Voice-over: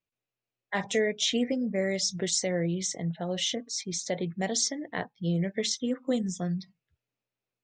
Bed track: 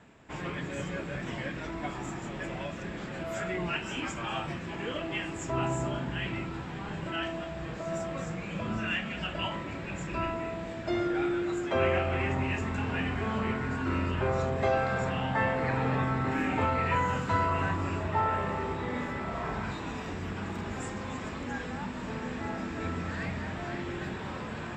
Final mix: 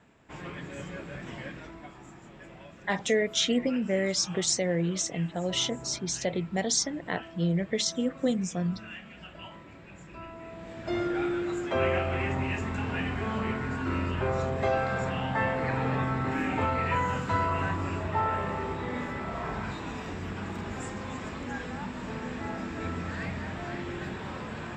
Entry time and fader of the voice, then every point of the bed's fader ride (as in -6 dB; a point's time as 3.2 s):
2.15 s, +1.0 dB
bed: 1.5 s -4 dB
1.92 s -11.5 dB
10.27 s -11.5 dB
10.96 s 0 dB